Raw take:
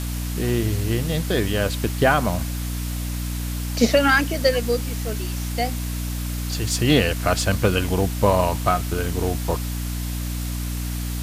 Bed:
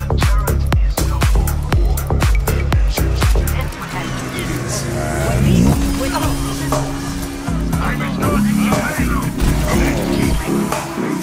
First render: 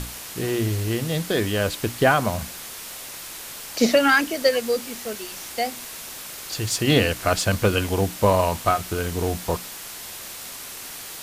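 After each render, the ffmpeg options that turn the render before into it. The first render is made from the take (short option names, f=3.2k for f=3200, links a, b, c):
-af "bandreject=f=60:t=h:w=6,bandreject=f=120:t=h:w=6,bandreject=f=180:t=h:w=6,bandreject=f=240:t=h:w=6,bandreject=f=300:t=h:w=6"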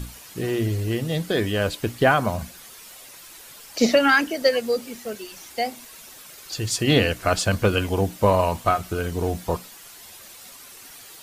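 -af "afftdn=nr=10:nf=-37"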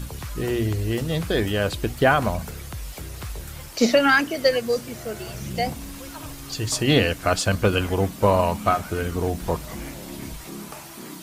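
-filter_complex "[1:a]volume=-20dB[a];[0:a][a]amix=inputs=2:normalize=0"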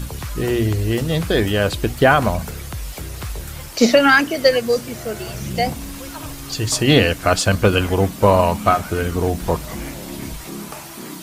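-af "volume=5dB,alimiter=limit=-1dB:level=0:latency=1"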